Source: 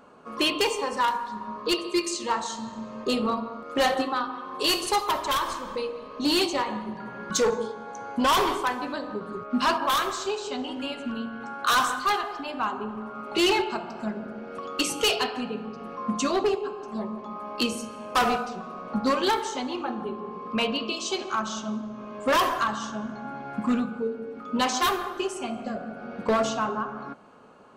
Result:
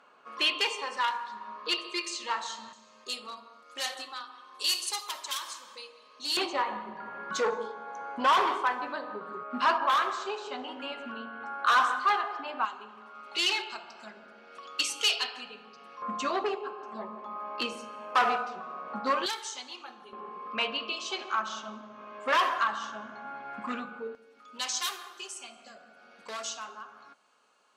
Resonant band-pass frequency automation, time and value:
resonant band-pass, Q 0.71
2,500 Hz
from 0:02.73 7,000 Hz
from 0:06.37 1,300 Hz
from 0:12.65 4,100 Hz
from 0:16.02 1,400 Hz
from 0:19.26 6,000 Hz
from 0:20.13 1,800 Hz
from 0:24.15 6,700 Hz

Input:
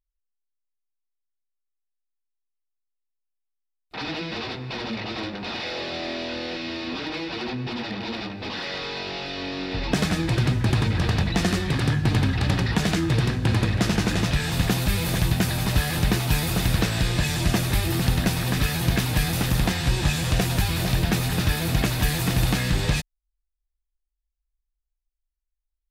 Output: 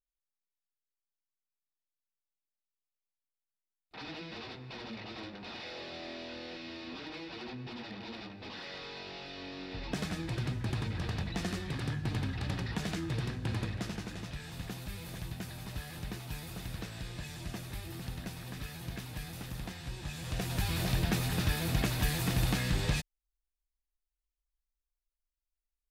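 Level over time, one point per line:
0:13.63 −13 dB
0:14.11 −19 dB
0:20.04 −19 dB
0:20.72 −8 dB

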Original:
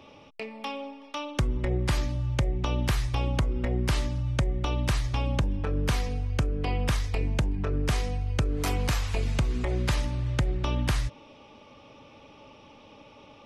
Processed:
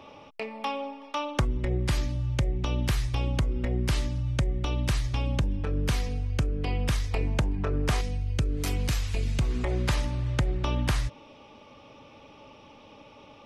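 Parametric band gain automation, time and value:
parametric band 930 Hz 1.8 octaves
+5.5 dB
from 0:01.45 −4 dB
from 0:07.11 +3 dB
from 0:08.01 −8.5 dB
from 0:09.41 +1 dB

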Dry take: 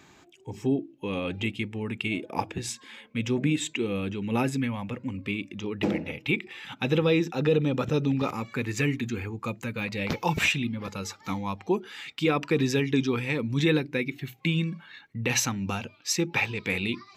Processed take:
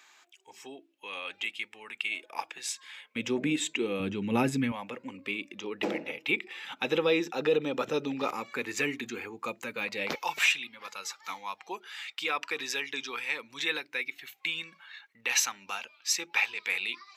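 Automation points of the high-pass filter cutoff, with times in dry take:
1,100 Hz
from 0:03.16 290 Hz
from 0:04.00 140 Hz
from 0:04.72 400 Hz
from 0:10.15 980 Hz

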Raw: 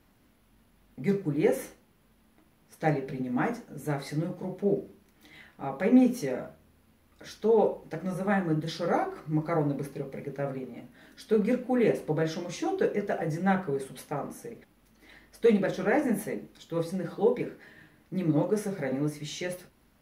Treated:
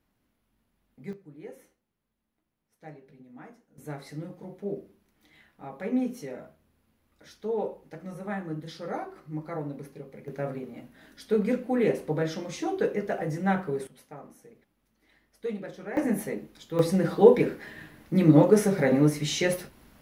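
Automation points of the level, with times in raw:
−11 dB
from 0:01.13 −19 dB
from 0:03.78 −7 dB
from 0:10.28 0 dB
from 0:13.87 −11 dB
from 0:15.97 +1 dB
from 0:16.79 +8.5 dB

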